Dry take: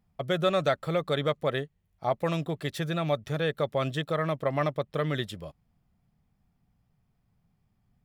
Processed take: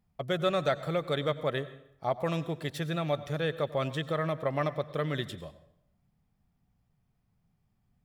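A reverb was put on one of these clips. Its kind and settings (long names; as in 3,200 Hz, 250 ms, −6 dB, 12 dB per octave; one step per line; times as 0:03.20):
dense smooth reverb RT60 0.73 s, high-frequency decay 0.8×, pre-delay 80 ms, DRR 15 dB
level −2.5 dB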